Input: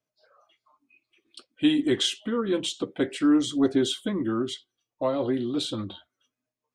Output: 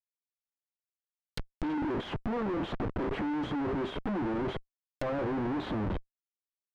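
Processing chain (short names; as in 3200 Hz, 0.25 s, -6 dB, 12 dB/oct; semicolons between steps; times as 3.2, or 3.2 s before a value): Schmitt trigger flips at -39.5 dBFS; treble ducked by the level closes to 1500 Hz, closed at -29.5 dBFS; gain -3 dB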